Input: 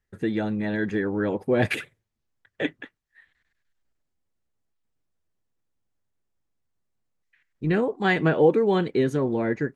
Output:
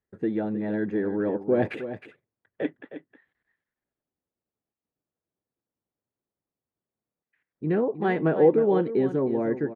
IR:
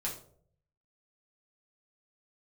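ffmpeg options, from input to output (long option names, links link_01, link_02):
-af "bandpass=frequency=400:width_type=q:width=0.6:csg=0,aecho=1:1:313:0.266"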